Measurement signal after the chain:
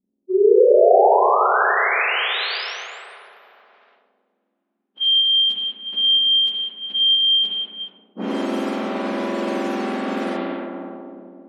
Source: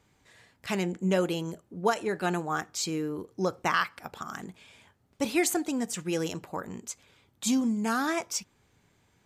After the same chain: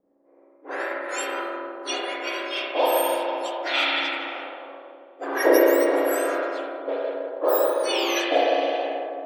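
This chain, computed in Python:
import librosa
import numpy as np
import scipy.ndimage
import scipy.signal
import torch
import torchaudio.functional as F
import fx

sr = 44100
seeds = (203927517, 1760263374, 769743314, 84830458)

y = fx.octave_mirror(x, sr, pivot_hz=2000.0)
y = fx.rev_spring(y, sr, rt60_s=3.6, pass_ms=(32, 54), chirp_ms=50, drr_db=-6.5)
y = fx.env_lowpass(y, sr, base_hz=420.0, full_db=-22.5)
y = y * 10.0 ** (5.0 / 20.0)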